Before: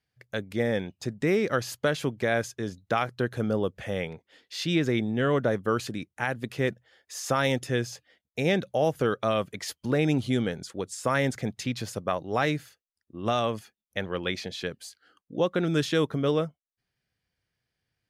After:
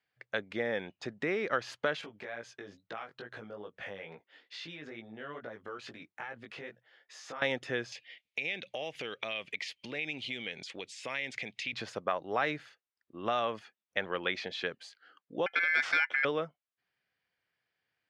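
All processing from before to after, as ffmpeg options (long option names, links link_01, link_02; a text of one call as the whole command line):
ffmpeg -i in.wav -filter_complex "[0:a]asettb=1/sr,asplit=3[link_01][link_02][link_03];[link_01]atrim=end=2.014[link_04];[link_02]atrim=start=2.01:end=7.42,asetpts=PTS-STARTPTS,afade=type=in:duration=0.004:curve=qsin,afade=type=out:start_time=5.406:duration=0.004:curve=qsin,acompressor=threshold=-34dB:ratio=8:attack=3.2:release=140:knee=1:detection=peak,flanger=delay=17:depth=3.3:speed=2.3[link_05];[link_03]atrim=start=7.416[link_06];[link_04][link_05]acrossfade=duration=0.004:curve1=hsin:curve2=qsin[link_07];[link_07][link_06]acrossfade=duration=0.004:curve1=qsin:curve2=hsin,asettb=1/sr,asplit=3[link_08][link_09][link_10];[link_08]atrim=end=7.924[link_11];[link_09]atrim=start=7.92:end=11.73,asetpts=PTS-STARTPTS,afade=type=in:duration=0.004:curve=qsin,afade=type=out:start_time=3.806:duration=0.004:curve=qsin,highshelf=frequency=1800:width_type=q:width=3:gain=9,acompressor=threshold=-35dB:ratio=4:attack=3.2:release=140:knee=1:detection=peak[link_12];[link_10]atrim=start=11.726[link_13];[link_11][link_12]acrossfade=duration=0.004:curve1=hsin:curve2=qsin[link_14];[link_14][link_13]acrossfade=duration=0.004:curve1=qsin:curve2=hsin,asettb=1/sr,asplit=3[link_15][link_16][link_17];[link_15]atrim=end=15.464[link_18];[link_16]atrim=start=15.46:end=16.25,asetpts=PTS-STARTPTS,afade=type=in:duration=0.004:curve=qsin,afade=type=out:start_time=0.786:duration=0.004:curve=qsin,highshelf=frequency=4100:gain=5.5,aeval=exprs='val(0)*sin(2*PI*1900*n/s)':channel_layout=same[link_19];[link_17]atrim=start=16.246[link_20];[link_18][link_19]acrossfade=duration=0.004:curve1=hsin:curve2=qsin[link_21];[link_21][link_20]acrossfade=duration=0.004:curve1=qsin:curve2=hsin,lowpass=2900,acompressor=threshold=-28dB:ratio=2.5,highpass=frequency=840:poles=1,volume=4dB" out.wav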